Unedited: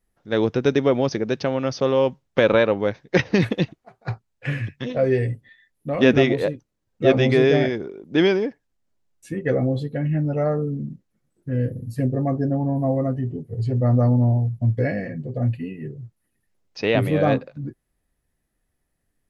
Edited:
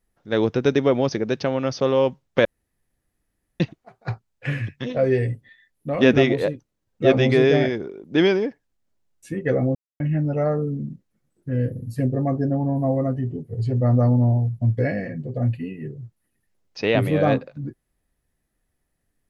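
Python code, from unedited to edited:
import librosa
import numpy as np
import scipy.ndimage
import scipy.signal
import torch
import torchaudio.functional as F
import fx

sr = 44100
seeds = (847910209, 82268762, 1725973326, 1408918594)

y = fx.edit(x, sr, fx.room_tone_fill(start_s=2.45, length_s=1.15),
    fx.silence(start_s=9.75, length_s=0.25), tone=tone)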